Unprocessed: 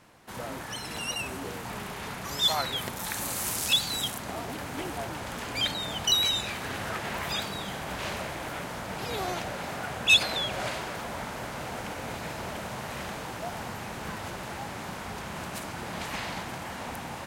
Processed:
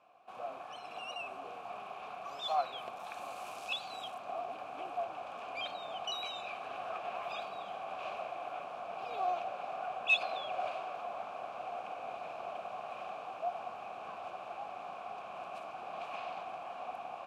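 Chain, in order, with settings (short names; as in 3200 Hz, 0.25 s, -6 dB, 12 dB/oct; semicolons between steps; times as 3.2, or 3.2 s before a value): vowel filter a; gain +3.5 dB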